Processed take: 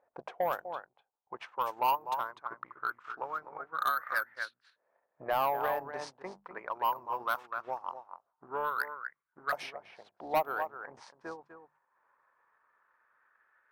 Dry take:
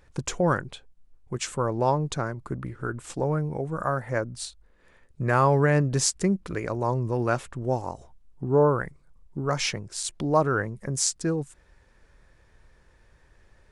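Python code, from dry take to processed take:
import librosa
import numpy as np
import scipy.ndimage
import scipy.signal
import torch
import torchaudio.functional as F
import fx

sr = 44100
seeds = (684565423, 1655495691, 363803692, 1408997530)

p1 = fx.octave_divider(x, sr, octaves=2, level_db=-2.0)
p2 = fx.tilt_eq(p1, sr, slope=3.5)
p3 = fx.hum_notches(p2, sr, base_hz=50, count=4)
p4 = p3 + fx.echo_single(p3, sr, ms=248, db=-8.5, dry=0)
p5 = fx.dynamic_eq(p4, sr, hz=7300.0, q=2.4, threshold_db=-36.0, ratio=4.0, max_db=-5)
p6 = fx.transient(p5, sr, attack_db=5, sustain_db=-6)
p7 = fx.filter_lfo_bandpass(p6, sr, shape='saw_up', hz=0.21, low_hz=660.0, high_hz=1600.0, q=3.6)
p8 = 10.0 ** (-25.0 / 20.0) * np.tanh(p7 / 10.0 ** (-25.0 / 20.0))
p9 = np.repeat(scipy.signal.resample_poly(p8, 1, 3), 3)[:len(p8)]
p10 = fx.env_lowpass(p9, sr, base_hz=1500.0, full_db=-30.0)
y = p10 * 10.0 ** (3.0 / 20.0)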